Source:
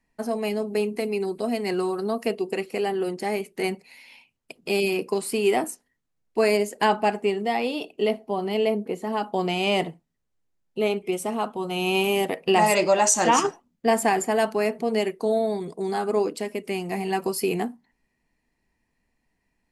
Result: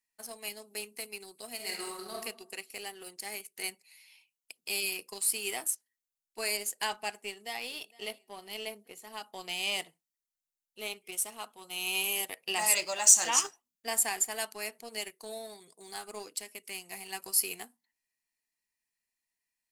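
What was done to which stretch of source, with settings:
0:01.55–0:02.22: thrown reverb, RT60 0.81 s, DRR −1.5 dB
0:07.22–0:07.72: delay throw 460 ms, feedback 35%, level −18 dB
whole clip: first-order pre-emphasis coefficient 0.97; leveller curve on the samples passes 1

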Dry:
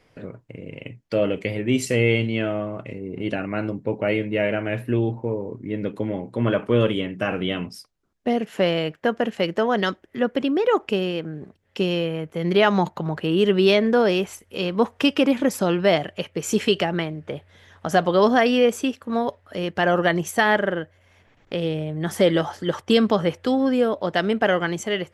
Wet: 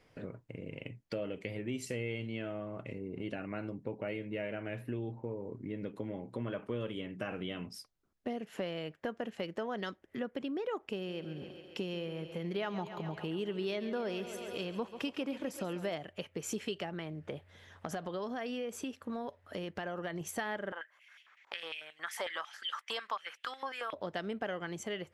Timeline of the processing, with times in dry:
0:10.95–0:15.95: feedback echo with a high-pass in the loop 137 ms, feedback 73%, high-pass 180 Hz, level −13.5 dB
0:16.89–0:20.21: downward compressor 2.5 to 1, threshold −23 dBFS
0:20.72–0:23.93: high-pass on a step sequencer 11 Hz 930–2,900 Hz
whole clip: downward compressor 3 to 1, threshold −32 dBFS; level −6 dB

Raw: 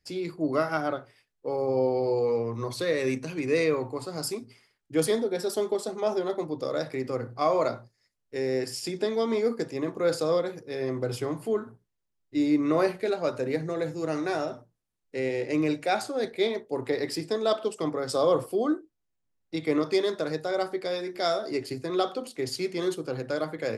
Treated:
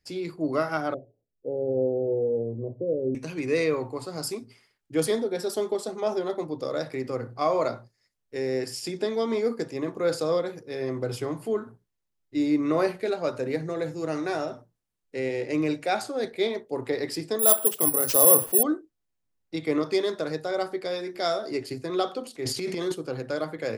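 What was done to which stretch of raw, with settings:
0:00.94–0:03.15: Butterworth low-pass 650 Hz 48 dB per octave
0:17.39–0:18.63: bad sample-rate conversion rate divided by 4×, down none, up zero stuff
0:22.33–0:22.92: transient designer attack −4 dB, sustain +10 dB

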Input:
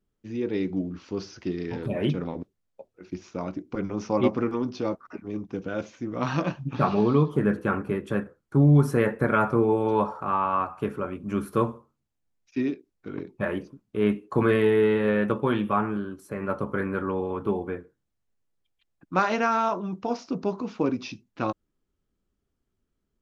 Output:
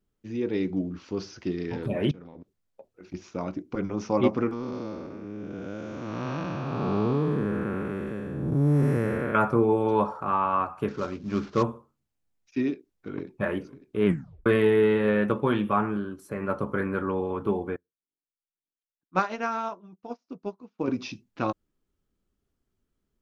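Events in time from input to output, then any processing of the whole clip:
0:02.11–0:03.14: downward compressor 8 to 1, threshold −41 dBFS
0:04.53–0:09.35: spectrum smeared in time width 411 ms
0:10.88–0:11.63: variable-slope delta modulation 32 kbit/s
0:12.71–0:13.39: delay throw 550 ms, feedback 75%, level −17 dB
0:14.06: tape stop 0.40 s
0:17.76–0:20.88: expander for the loud parts 2.5 to 1, over −42 dBFS

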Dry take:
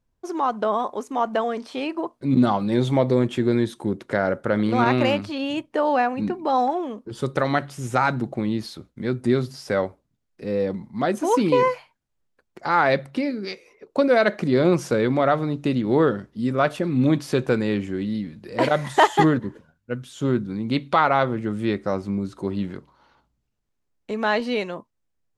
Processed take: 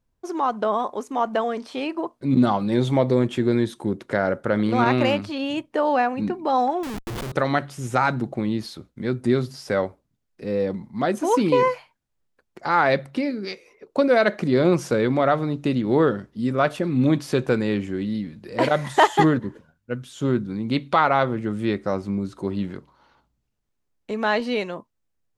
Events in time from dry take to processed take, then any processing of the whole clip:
0:06.83–0:07.32: comparator with hysteresis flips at −37 dBFS

